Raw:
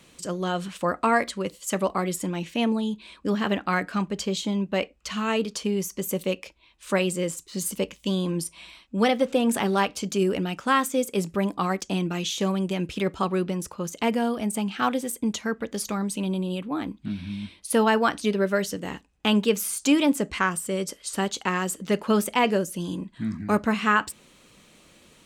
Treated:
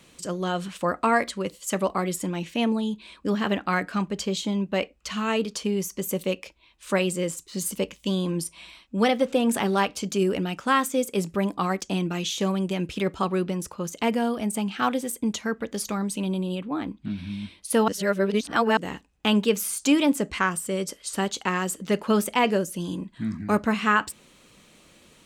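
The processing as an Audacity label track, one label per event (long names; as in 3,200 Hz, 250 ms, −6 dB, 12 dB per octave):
16.550000	17.180000	high-shelf EQ 6,400 Hz −8 dB
17.880000	18.770000	reverse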